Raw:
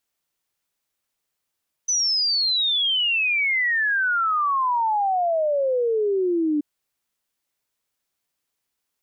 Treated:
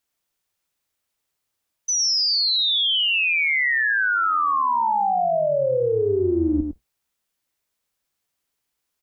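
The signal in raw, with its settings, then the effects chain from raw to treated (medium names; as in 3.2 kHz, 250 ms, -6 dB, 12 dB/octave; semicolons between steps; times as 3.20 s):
log sweep 6.1 kHz -> 290 Hz 4.73 s -18.5 dBFS
octave divider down 2 oct, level -5 dB; delay 106 ms -6 dB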